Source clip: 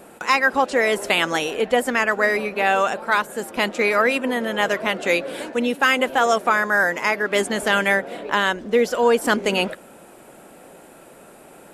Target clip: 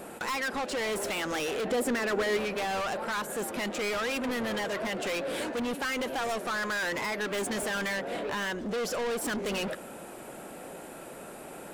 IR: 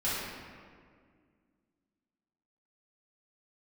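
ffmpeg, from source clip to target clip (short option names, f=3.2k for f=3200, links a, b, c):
-filter_complex "[0:a]alimiter=limit=-13dB:level=0:latency=1:release=186,asoftclip=type=tanh:threshold=-31dB,asettb=1/sr,asplit=3[a][b][c];[a]atrim=end=1.654[d];[b]atrim=start=1.65:end=2.37,asetpts=PTS-STARTPTS,afade=t=in:d=0.004:c=qsin,afade=t=out:st=0.716:d=0.004:c=qsin,equalizer=f=350:t=o:w=1.2:g=8.5[e];[c]atrim=start=2.366[f];[d][e]acrossfade=d=0.004:c1=hsin:c2=qsin[g];[g][f]acrossfade=d=0.004:c1=qsin:c2=hsin,volume=2dB"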